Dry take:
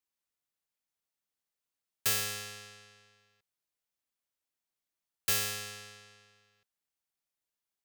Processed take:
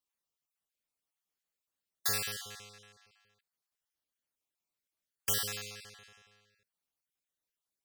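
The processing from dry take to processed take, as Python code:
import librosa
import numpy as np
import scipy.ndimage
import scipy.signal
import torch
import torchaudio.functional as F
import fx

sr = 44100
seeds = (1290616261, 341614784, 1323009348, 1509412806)

y = fx.spec_dropout(x, sr, seeds[0], share_pct=32)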